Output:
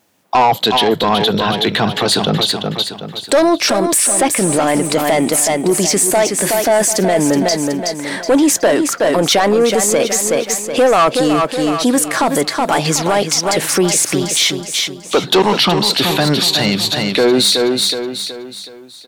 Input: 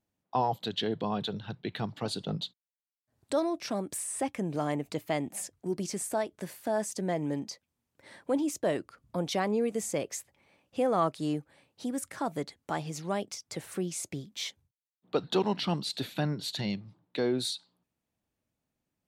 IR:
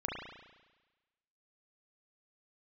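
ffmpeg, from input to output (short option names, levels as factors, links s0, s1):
-af "highpass=f=270:p=1,lowshelf=f=410:g=-4.5,asoftclip=type=tanh:threshold=0.0355,aecho=1:1:372|744|1116|1488|1860:0.398|0.167|0.0702|0.0295|0.0124,alimiter=level_in=47.3:limit=0.891:release=50:level=0:latency=1,volume=0.562"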